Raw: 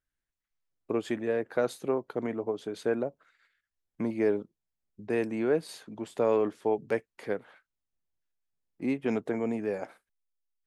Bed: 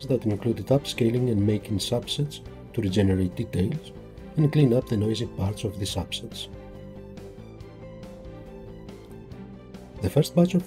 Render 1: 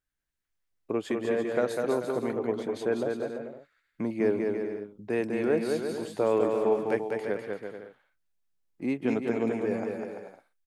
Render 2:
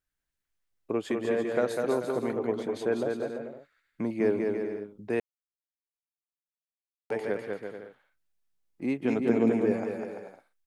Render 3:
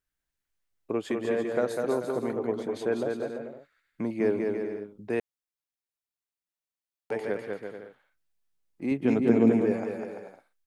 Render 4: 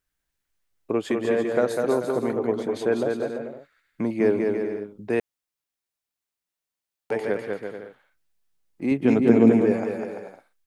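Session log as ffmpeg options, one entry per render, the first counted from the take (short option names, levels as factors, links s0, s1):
-af "aecho=1:1:200|340|438|506.6|554.6:0.631|0.398|0.251|0.158|0.1"
-filter_complex "[0:a]asettb=1/sr,asplit=3[s0][s1][s2];[s0]atrim=end=9.194[s3];[s1]atrim=start=9.19:end=9.72,asetpts=PTS-STARTPTS,afade=t=in:d=0.004:c=qsin,afade=t=out:st=0.526:d=0.004:c=qsin,equalizer=f=220:t=o:w=2.1:g=6[s4];[s2]atrim=start=9.716[s5];[s3][s4]acrossfade=d=0.004:c1=hsin:c2=qsin[s6];[s6][s5]acrossfade=d=0.004:c1=qsin:c2=hsin,asplit=3[s7][s8][s9];[s7]atrim=end=5.2,asetpts=PTS-STARTPTS,afade=t=out:st=5.196:d=0.004:c=hsin[s10];[s8]atrim=start=5.2:end=7.1,asetpts=PTS-STARTPTS,volume=0[s11];[s9]atrim=start=7.1,asetpts=PTS-STARTPTS,afade=t=in:d=0.004:c=hsin[s12];[s10][s11][s12]concat=n=3:v=0:a=1"
-filter_complex "[0:a]asettb=1/sr,asplit=3[s0][s1][s2];[s0]atrim=end=1.474[s3];[s1]atrim=start=1.47:end=2.71,asetpts=PTS-STARTPTS,afade=t=in:d=0.004:c=qsin,afade=t=out:st=1.236:d=0.004:c=qsin,equalizer=f=2700:w=1.1:g=-3.5[s4];[s2]atrim=start=2.706[s5];[s3][s4]acrossfade=d=0.004:c1=hsin:c2=qsin[s6];[s6][s5]acrossfade=d=0.004:c1=qsin:c2=hsin,asettb=1/sr,asplit=3[s7][s8][s9];[s7]atrim=end=8.914[s10];[s8]atrim=start=8.91:end=9.63,asetpts=PTS-STARTPTS,afade=t=in:d=0.004:c=qsin,afade=t=out:st=0.716:d=0.004:c=qsin,lowshelf=f=290:g=6.5[s11];[s9]atrim=start=9.626[s12];[s10][s11]acrossfade=d=0.004:c1=hsin:c2=qsin[s13];[s13][s12]acrossfade=d=0.004:c1=qsin:c2=hsin"
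-af "volume=1.78"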